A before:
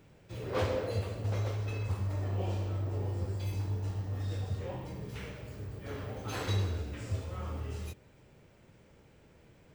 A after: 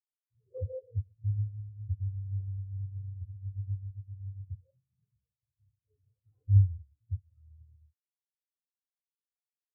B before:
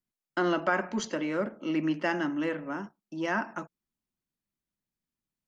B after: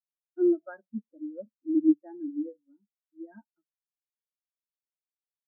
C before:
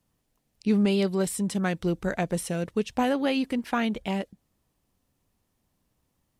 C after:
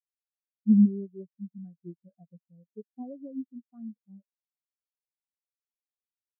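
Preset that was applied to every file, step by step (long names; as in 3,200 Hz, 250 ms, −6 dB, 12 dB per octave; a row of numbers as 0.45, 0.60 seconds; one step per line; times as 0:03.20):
parametric band 3,700 Hz −9 dB 1.1 octaves
every bin expanded away from the loudest bin 4 to 1
normalise the peak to −12 dBFS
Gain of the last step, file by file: +8.5, +4.0, +2.0 decibels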